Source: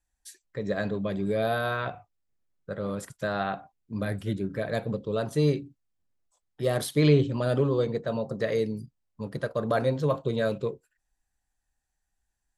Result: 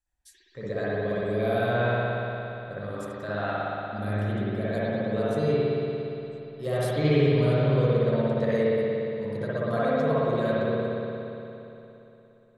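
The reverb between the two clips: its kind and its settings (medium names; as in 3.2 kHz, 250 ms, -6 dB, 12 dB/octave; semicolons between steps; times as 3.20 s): spring tank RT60 3.2 s, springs 58 ms, chirp 60 ms, DRR -9.5 dB; trim -7.5 dB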